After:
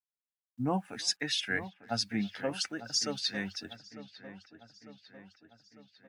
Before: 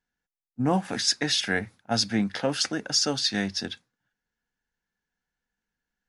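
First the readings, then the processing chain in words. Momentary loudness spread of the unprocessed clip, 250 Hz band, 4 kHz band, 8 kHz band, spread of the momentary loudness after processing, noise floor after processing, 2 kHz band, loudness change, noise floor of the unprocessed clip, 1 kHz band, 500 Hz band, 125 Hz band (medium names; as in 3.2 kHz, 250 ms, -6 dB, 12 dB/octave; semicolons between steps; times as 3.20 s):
6 LU, -8.0 dB, -7.0 dB, -8.0 dB, 18 LU, under -85 dBFS, -5.5 dB, -7.5 dB, under -85 dBFS, -7.0 dB, -7.5 dB, -8.0 dB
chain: expander on every frequency bin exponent 1.5; bit crusher 11-bit; on a send: feedback echo behind a low-pass 900 ms, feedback 57%, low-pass 3 kHz, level -13 dB; on the sum: dynamic bell 2.2 kHz, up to +3 dB, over -40 dBFS, Q 0.74; speakerphone echo 330 ms, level -26 dB; trim -6 dB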